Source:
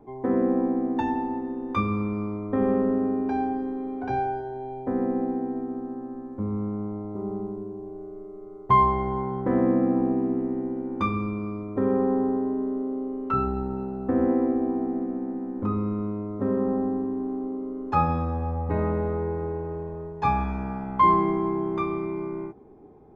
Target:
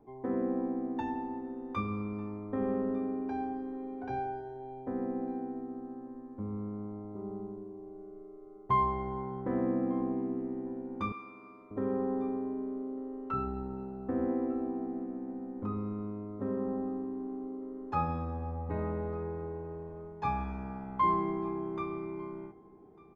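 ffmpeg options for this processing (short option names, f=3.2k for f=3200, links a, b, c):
-filter_complex "[0:a]asettb=1/sr,asplit=3[a][b][c];[a]atrim=end=11.124[d];[b]atrim=start=11.12:end=11.71,asetpts=PTS-STARTPTS,afade=t=in:d=0.004:c=qsin,afade=t=out:st=0.586:d=0.004:c=qsin,highpass=860[e];[c]atrim=start=11.706[f];[d][e]acrossfade=d=0.004:c1=hsin:c2=qsin[g];[g][f]acrossfade=d=0.004:c1=qsin:c2=hsin,aecho=1:1:1199:0.0708,volume=-9dB"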